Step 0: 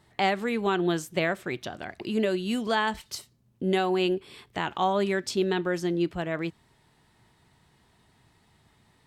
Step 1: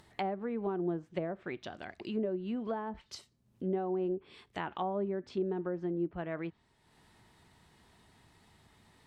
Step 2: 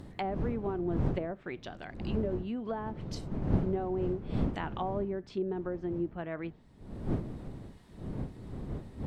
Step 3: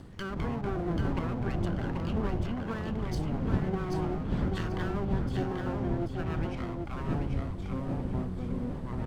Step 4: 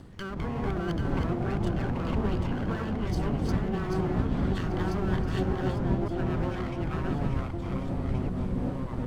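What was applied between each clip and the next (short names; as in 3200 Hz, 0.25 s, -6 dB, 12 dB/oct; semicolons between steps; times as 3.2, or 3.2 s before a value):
treble ducked by the level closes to 700 Hz, closed at -22.5 dBFS; bell 130 Hz -5.5 dB 0.29 oct; upward compressor, threshold -47 dBFS; gain -7 dB
wind noise 210 Hz -37 dBFS
minimum comb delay 0.63 ms; echoes that change speed 0.127 s, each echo -6 st, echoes 2; feedback echo 0.786 s, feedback 25%, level -4.5 dB
reverse delay 0.553 s, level -0.5 dB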